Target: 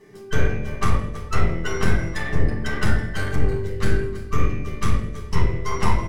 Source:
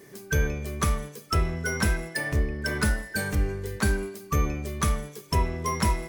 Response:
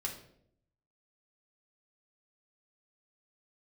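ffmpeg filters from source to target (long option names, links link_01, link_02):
-filter_complex "[0:a]aemphasis=mode=reproduction:type=50fm,aecho=1:1:325:0.224,aeval=exprs='0.266*(cos(1*acos(clip(val(0)/0.266,-1,1)))-cos(1*PI/2))+0.0944*(cos(4*acos(clip(val(0)/0.266,-1,1)))-cos(4*PI/2))':channel_layout=same,asettb=1/sr,asplit=3[link_01][link_02][link_03];[link_01]atrim=end=3.614[link_04];[link_02]atrim=start=3.61:end=5.71,asetpts=PTS-STARTPTS,afade=type=in:duration=0.004:curve=qsin,afade=type=out:start_time=2.096:duration=0.004:curve=qsin,equalizer=frequency=810:width_type=o:width=1:gain=-8.5[link_05];[link_03]atrim=start=5.706[link_06];[link_04][link_05]acrossfade=duration=0.004:curve1=hsin:curve2=qsin[link_07];[link_07][link_06]acrossfade=duration=0.004:curve1=qsin:curve2=hsin[link_08];[1:a]atrim=start_sample=2205[link_09];[link_08][link_09]afir=irnorm=-1:irlink=0"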